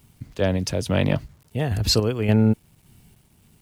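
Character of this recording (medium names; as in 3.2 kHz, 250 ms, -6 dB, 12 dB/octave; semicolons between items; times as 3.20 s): random-step tremolo 3.5 Hz; a quantiser's noise floor 10-bit, dither none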